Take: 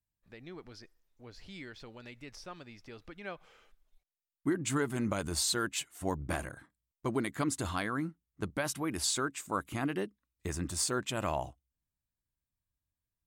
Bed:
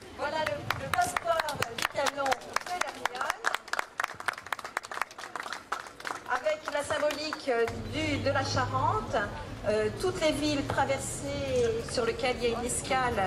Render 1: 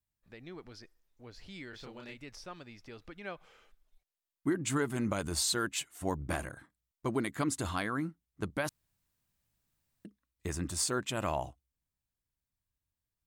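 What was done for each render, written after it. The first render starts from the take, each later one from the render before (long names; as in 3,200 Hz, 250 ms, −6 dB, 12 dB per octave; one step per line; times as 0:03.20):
0:01.70–0:02.18: double-tracking delay 30 ms −2 dB
0:08.69–0:10.05: fill with room tone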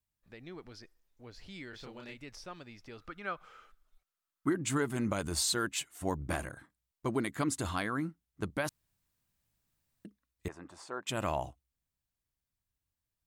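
0:02.98–0:04.49: parametric band 1,300 Hz +14 dB 0.36 octaves
0:10.48–0:11.07: resonant band-pass 840 Hz, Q 1.4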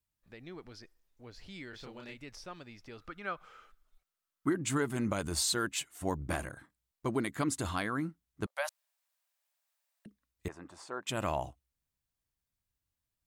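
0:08.46–0:10.06: Chebyshev high-pass filter 560 Hz, order 6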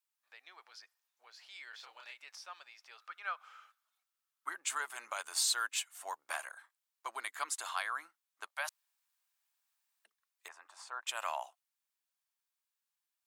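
high-pass filter 810 Hz 24 dB per octave
notch filter 2,000 Hz, Q 27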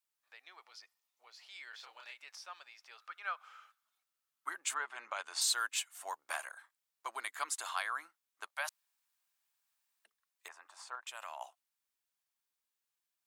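0:00.59–0:01.46: notch filter 1,600 Hz, Q 5.4
0:04.73–0:05.40: low-pass filter 2,500 Hz → 5,600 Hz
0:10.95–0:11.41: downward compressor 3 to 1, threshold −43 dBFS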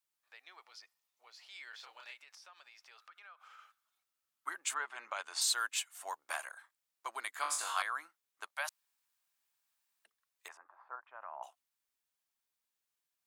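0:02.17–0:03.59: downward compressor, threshold −53 dBFS
0:07.41–0:07.82: flutter between parallel walls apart 3.5 metres, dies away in 0.44 s
0:10.57–0:11.43: low-pass filter 1,500 Hz 24 dB per octave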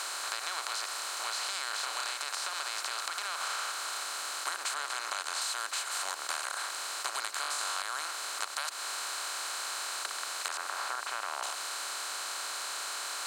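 compressor on every frequency bin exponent 0.2
downward compressor, threshold −31 dBFS, peak gain reduction 9 dB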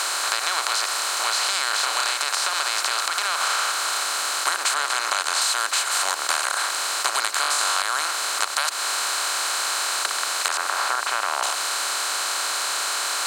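level +12 dB
brickwall limiter −3 dBFS, peak gain reduction 1.5 dB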